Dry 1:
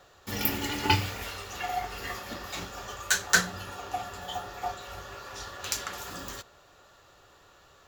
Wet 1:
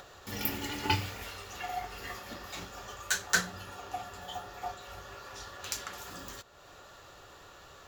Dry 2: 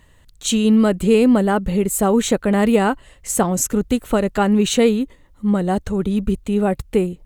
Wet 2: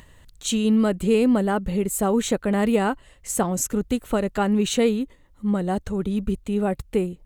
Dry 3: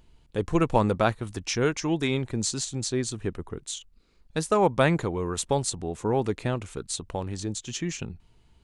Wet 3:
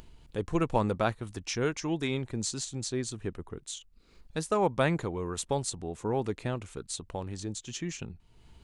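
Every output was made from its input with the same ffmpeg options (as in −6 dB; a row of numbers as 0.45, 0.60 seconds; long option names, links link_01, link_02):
-af "acompressor=mode=upward:threshold=-37dB:ratio=2.5,volume=-5dB"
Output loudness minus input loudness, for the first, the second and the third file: −5.0, −5.0, −5.0 LU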